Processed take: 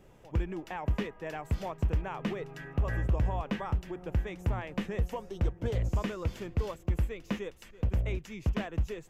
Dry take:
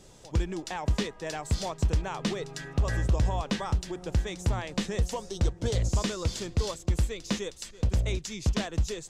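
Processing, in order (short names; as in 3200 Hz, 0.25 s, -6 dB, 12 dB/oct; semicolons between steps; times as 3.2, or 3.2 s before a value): band shelf 5900 Hz -15 dB; gain -3 dB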